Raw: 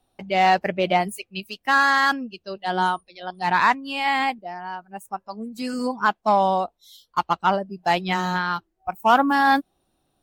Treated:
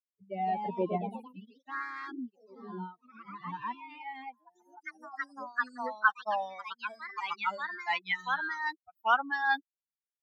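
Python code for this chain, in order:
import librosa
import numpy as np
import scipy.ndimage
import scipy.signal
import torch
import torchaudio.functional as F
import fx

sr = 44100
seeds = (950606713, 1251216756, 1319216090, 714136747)

y = fx.bin_expand(x, sr, power=3.0)
y = fx.filter_sweep_bandpass(y, sr, from_hz=240.0, to_hz=2000.0, start_s=3.61, end_s=6.35, q=1.8)
y = fx.echo_pitch(y, sr, ms=198, semitones=2, count=3, db_per_echo=-6.0)
y = F.gain(torch.from_numpy(y), 3.5).numpy()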